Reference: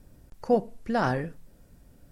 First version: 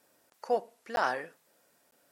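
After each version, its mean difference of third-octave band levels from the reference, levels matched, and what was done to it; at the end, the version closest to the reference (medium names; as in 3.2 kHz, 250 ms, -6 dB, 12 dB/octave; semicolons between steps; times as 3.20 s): 6.0 dB: high-pass 640 Hz 12 dB/octave; crackling interface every 0.95 s, samples 512, zero, from 0.96 s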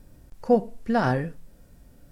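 1.5 dB: harmonic-percussive split harmonic +8 dB; bit crusher 12-bit; trim -3 dB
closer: second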